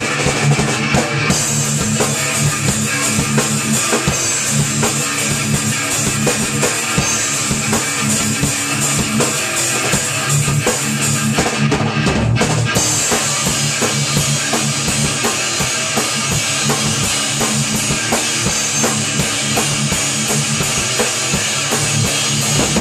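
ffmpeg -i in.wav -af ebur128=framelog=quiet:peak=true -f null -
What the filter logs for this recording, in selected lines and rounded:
Integrated loudness:
  I:         -14.6 LUFS
  Threshold: -24.6 LUFS
Loudness range:
  LRA:         0.5 LU
  Threshold: -34.6 LUFS
  LRA low:   -14.8 LUFS
  LRA high:  -14.3 LUFS
True peak:
  Peak:       -1.5 dBFS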